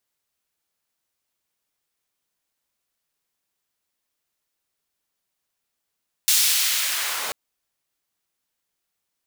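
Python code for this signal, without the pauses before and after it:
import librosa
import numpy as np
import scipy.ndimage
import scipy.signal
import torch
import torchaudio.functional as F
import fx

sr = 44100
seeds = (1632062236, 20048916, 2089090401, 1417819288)

y = fx.riser_noise(sr, seeds[0], length_s=1.04, colour='pink', kind='highpass', start_hz=4200.0, end_hz=520.0, q=0.82, swell_db=-15, law='linear')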